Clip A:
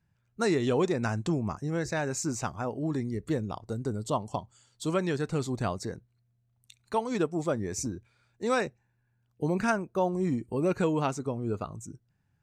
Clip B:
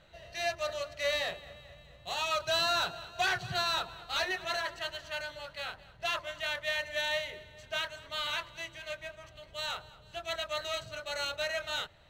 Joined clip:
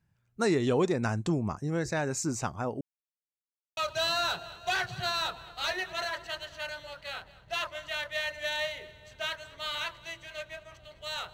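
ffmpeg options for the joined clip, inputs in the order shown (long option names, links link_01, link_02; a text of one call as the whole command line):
ffmpeg -i cue0.wav -i cue1.wav -filter_complex "[0:a]apad=whole_dur=11.33,atrim=end=11.33,asplit=2[link_01][link_02];[link_01]atrim=end=2.81,asetpts=PTS-STARTPTS,afade=type=out:start_time=2.806:duration=0.004:curve=hsin[link_03];[link_02]atrim=start=2.81:end=3.77,asetpts=PTS-STARTPTS,volume=0[link_04];[1:a]atrim=start=2.29:end=9.85,asetpts=PTS-STARTPTS,afade=type=in:duration=0.004:curve=hsin[link_05];[link_03][link_04][link_05]concat=n=3:v=0:a=1" out.wav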